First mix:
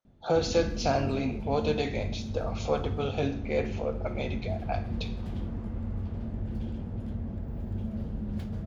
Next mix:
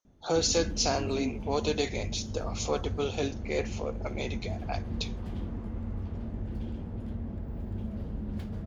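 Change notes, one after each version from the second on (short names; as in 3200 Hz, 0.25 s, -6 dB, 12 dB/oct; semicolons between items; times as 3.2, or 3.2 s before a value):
speech: remove LPF 2600 Hz 12 dB/oct; reverb: off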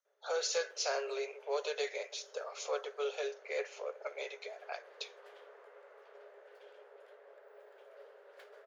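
master: add rippled Chebyshev high-pass 400 Hz, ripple 9 dB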